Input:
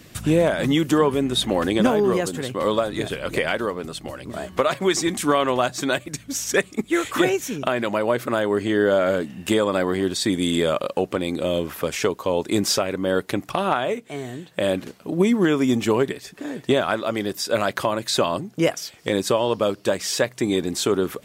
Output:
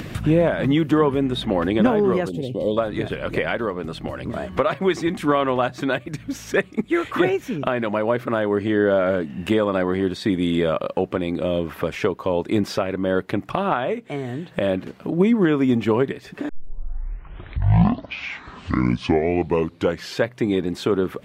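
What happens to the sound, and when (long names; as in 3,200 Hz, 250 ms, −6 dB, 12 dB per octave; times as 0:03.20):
0:02.29–0:02.77: Chebyshev band-stop filter 570–3,400 Hz
0:16.49: tape start 3.88 s
whole clip: dynamic equaliser 7,500 Hz, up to −5 dB, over −43 dBFS, Q 1.2; upward compression, threshold −22 dBFS; bass and treble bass +3 dB, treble −13 dB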